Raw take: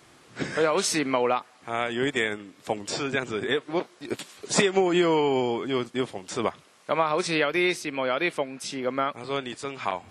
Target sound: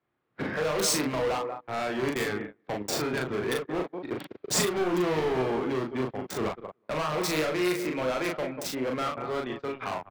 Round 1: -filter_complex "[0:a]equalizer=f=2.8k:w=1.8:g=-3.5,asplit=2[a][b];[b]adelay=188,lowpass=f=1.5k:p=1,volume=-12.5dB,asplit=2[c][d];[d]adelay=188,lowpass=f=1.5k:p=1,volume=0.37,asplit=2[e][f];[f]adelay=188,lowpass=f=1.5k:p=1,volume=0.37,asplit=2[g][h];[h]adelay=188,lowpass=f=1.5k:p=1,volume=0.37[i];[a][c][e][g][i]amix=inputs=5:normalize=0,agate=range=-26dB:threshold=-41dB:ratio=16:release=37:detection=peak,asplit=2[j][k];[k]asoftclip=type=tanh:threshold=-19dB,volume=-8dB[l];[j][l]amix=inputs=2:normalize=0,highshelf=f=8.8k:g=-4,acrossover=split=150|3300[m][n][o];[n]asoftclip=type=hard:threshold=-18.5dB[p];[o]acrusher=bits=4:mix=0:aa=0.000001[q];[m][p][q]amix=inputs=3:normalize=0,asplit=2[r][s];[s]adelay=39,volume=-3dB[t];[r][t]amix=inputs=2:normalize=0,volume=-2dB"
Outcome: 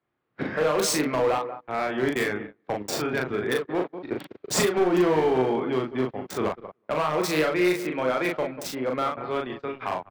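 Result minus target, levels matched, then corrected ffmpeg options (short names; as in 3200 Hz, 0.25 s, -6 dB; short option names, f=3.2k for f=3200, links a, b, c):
hard clip: distortion -7 dB
-filter_complex "[0:a]equalizer=f=2.8k:w=1.8:g=-3.5,asplit=2[a][b];[b]adelay=188,lowpass=f=1.5k:p=1,volume=-12.5dB,asplit=2[c][d];[d]adelay=188,lowpass=f=1.5k:p=1,volume=0.37,asplit=2[e][f];[f]adelay=188,lowpass=f=1.5k:p=1,volume=0.37,asplit=2[g][h];[h]adelay=188,lowpass=f=1.5k:p=1,volume=0.37[i];[a][c][e][g][i]amix=inputs=5:normalize=0,agate=range=-26dB:threshold=-41dB:ratio=16:release=37:detection=peak,asplit=2[j][k];[k]asoftclip=type=tanh:threshold=-19dB,volume=-8dB[l];[j][l]amix=inputs=2:normalize=0,highshelf=f=8.8k:g=-4,acrossover=split=150|3300[m][n][o];[n]asoftclip=type=hard:threshold=-26dB[p];[o]acrusher=bits=4:mix=0:aa=0.000001[q];[m][p][q]amix=inputs=3:normalize=0,asplit=2[r][s];[s]adelay=39,volume=-3dB[t];[r][t]amix=inputs=2:normalize=0,volume=-2dB"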